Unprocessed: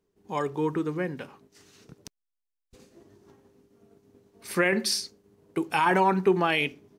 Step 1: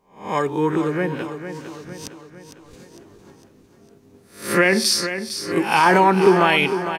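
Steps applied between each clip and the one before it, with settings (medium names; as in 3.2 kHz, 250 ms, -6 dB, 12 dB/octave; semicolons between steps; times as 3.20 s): reverse spectral sustain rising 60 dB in 0.41 s; on a send: feedback delay 455 ms, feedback 51%, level -10 dB; on the sum: trim +6.5 dB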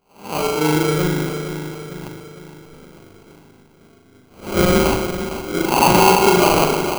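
spring tank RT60 1.4 s, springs 39 ms, chirp 50 ms, DRR -1.5 dB; sample-rate reducer 1.8 kHz, jitter 0%; trim -2 dB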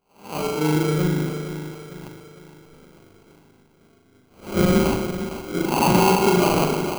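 dynamic bell 190 Hz, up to +7 dB, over -31 dBFS, Q 0.89; trim -6.5 dB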